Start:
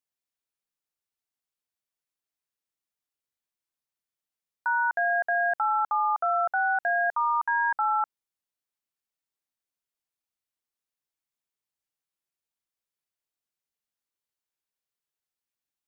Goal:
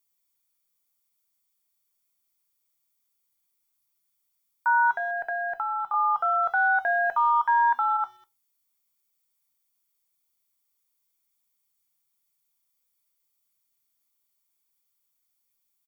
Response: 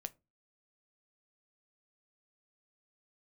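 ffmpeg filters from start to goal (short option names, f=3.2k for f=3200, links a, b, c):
-filter_complex "[0:a]aemphasis=mode=production:type=50kf,aecho=1:1:0.9:0.43,asettb=1/sr,asplit=3[a][b][c];[a]atrim=end=6.464[d];[b]atrim=start=6.46:end=7.97,asetpts=PTS-STARTPTS,afade=t=in:d=0.004:c=qsin,afade=t=out:st=1.506:d=0.004:c=qsin,acontrast=35[e];[c]atrim=start=7.966[f];[d][e]acrossfade=d=0.004:c1=hsin:c2=qsin[g];[g][f]acrossfade=d=0.004:c1=qsin:c2=hsin,alimiter=limit=-19dB:level=0:latency=1:release=129,asettb=1/sr,asplit=3[h][i][j];[h]atrim=end=4.964[k];[i]atrim=start=4.96:end=5.94,asetpts=PTS-STARTPTS,afade=t=in:d=0.004:c=qsin,afade=t=out:st=0.976:d=0.004:c=qsin,acrossover=split=370[l][m];[m]acompressor=threshold=-29dB:ratio=3[n];[l][n]amix=inputs=2:normalize=0[o];[j]atrim=start=5.936[p];[k][o]acrossfade=d=0.004:c1=hsin:c2=qsin[q];[q][p]acrossfade=d=0.004:c1=qsin:c2=hsin,asplit=2[r][s];[s]adelay=200,highpass=300,lowpass=3.4k,asoftclip=type=hard:threshold=-28dB,volume=-28dB[t];[r][t]amix=inputs=2:normalize=0[u];[1:a]atrim=start_sample=2205,asetrate=52920,aresample=44100[v];[u][v]afir=irnorm=-1:irlink=0,volume=7.5dB"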